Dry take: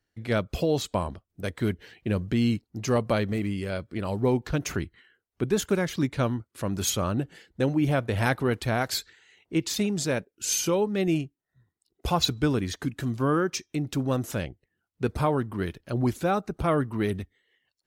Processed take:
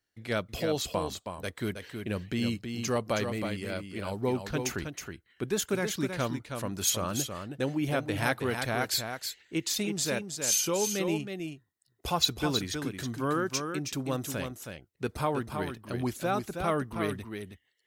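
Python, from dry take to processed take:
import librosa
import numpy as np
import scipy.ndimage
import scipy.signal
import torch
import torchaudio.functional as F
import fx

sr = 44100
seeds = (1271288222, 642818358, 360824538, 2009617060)

y = fx.tilt_eq(x, sr, slope=1.5)
y = y + 10.0 ** (-6.5 / 20.0) * np.pad(y, (int(320 * sr / 1000.0), 0))[:len(y)]
y = F.gain(torch.from_numpy(y), -3.5).numpy()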